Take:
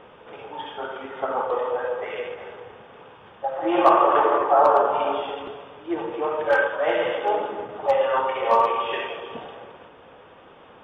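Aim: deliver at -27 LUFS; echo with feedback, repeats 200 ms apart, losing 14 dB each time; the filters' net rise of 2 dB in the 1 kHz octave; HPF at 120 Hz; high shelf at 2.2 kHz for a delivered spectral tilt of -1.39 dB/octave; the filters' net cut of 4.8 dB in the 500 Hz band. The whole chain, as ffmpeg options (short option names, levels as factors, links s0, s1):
-af "highpass=120,equalizer=f=500:t=o:g=-7.5,equalizer=f=1000:t=o:g=6,highshelf=f=2200:g=-6.5,aecho=1:1:200|400:0.2|0.0399,volume=0.562"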